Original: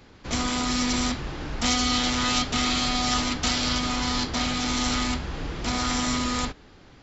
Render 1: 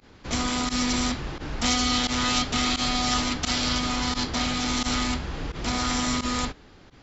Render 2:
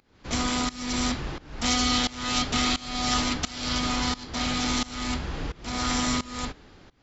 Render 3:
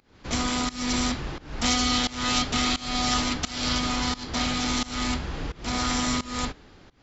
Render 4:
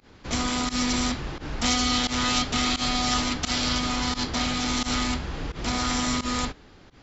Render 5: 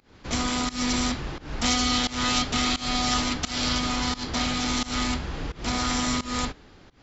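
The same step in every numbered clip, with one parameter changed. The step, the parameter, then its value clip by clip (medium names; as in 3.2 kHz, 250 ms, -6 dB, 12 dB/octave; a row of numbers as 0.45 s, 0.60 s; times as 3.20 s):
volume shaper, release: 60 ms, 494 ms, 316 ms, 91 ms, 207 ms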